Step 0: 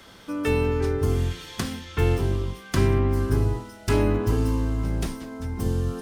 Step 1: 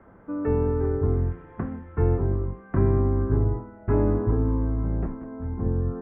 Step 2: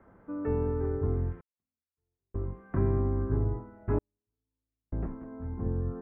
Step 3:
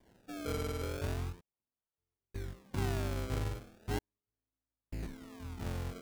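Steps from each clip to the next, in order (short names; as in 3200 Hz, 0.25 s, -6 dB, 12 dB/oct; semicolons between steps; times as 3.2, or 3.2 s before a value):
Bessel low-pass 1000 Hz, order 8
step gate "xxxxxx....x" 64 bpm -60 dB; gain -6 dB
decimation with a swept rate 33×, swing 100% 0.37 Hz; gain -7.5 dB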